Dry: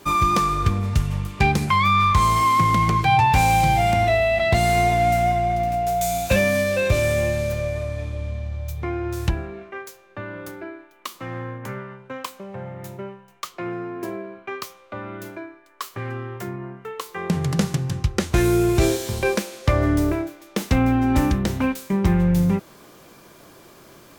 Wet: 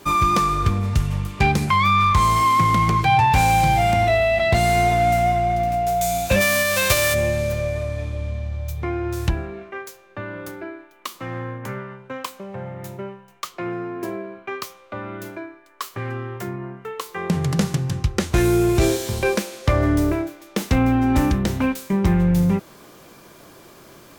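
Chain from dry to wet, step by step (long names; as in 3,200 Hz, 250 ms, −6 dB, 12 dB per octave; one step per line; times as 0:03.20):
0:06.40–0:07.13: spectral envelope flattened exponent 0.3
in parallel at −3 dB: soft clipping −14 dBFS, distortion −16 dB
on the sum: level −3 dB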